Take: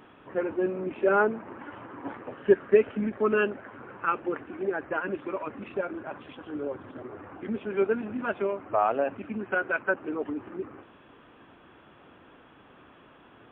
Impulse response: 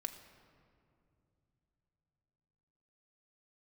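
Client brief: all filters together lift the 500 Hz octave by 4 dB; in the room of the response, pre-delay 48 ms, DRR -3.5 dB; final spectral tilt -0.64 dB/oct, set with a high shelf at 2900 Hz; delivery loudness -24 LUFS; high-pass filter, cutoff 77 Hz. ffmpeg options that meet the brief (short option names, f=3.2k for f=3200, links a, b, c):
-filter_complex "[0:a]highpass=77,equalizer=f=500:t=o:g=5,highshelf=f=2.9k:g=6.5,asplit=2[a][b];[1:a]atrim=start_sample=2205,adelay=48[c];[b][c]afir=irnorm=-1:irlink=0,volume=5dB[d];[a][d]amix=inputs=2:normalize=0,volume=-3dB"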